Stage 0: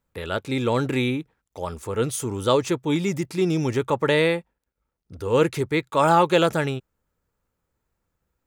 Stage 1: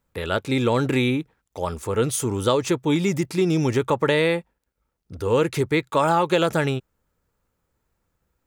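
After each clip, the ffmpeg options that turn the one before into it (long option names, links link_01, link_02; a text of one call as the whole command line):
ffmpeg -i in.wav -af "acompressor=threshold=-19dB:ratio=6,volume=3.5dB" out.wav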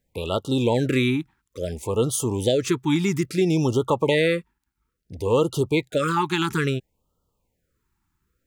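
ffmpeg -i in.wav -af "afftfilt=real='re*(1-between(b*sr/1024,530*pow(2000/530,0.5+0.5*sin(2*PI*0.59*pts/sr))/1.41,530*pow(2000/530,0.5+0.5*sin(2*PI*0.59*pts/sr))*1.41))':imag='im*(1-between(b*sr/1024,530*pow(2000/530,0.5+0.5*sin(2*PI*0.59*pts/sr))/1.41,530*pow(2000/530,0.5+0.5*sin(2*PI*0.59*pts/sr))*1.41))':win_size=1024:overlap=0.75" out.wav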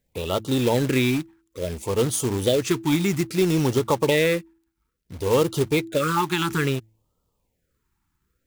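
ffmpeg -i in.wav -af "acrusher=bits=3:mode=log:mix=0:aa=0.000001,bandreject=frequency=109.8:width_type=h:width=4,bandreject=frequency=219.6:width_type=h:width=4,bandreject=frequency=329.4:width_type=h:width=4" out.wav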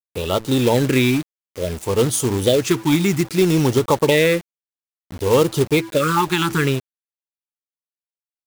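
ffmpeg -i in.wav -af "aeval=exprs='val(0)*gte(abs(val(0)),0.0126)':channel_layout=same,volume=4.5dB" out.wav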